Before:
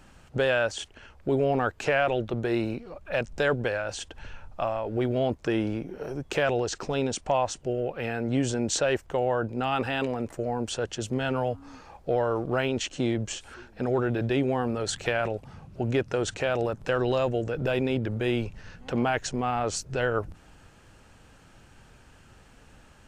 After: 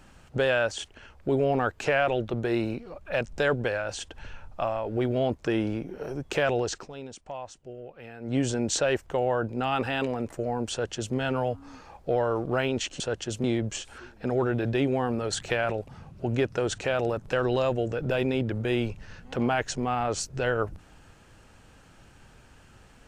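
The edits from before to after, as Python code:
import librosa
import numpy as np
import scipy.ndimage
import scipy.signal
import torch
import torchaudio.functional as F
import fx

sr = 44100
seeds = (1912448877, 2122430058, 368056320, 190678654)

y = fx.edit(x, sr, fx.fade_down_up(start_s=6.71, length_s=1.66, db=-13.0, fade_s=0.17),
    fx.duplicate(start_s=10.71, length_s=0.44, to_s=13.0), tone=tone)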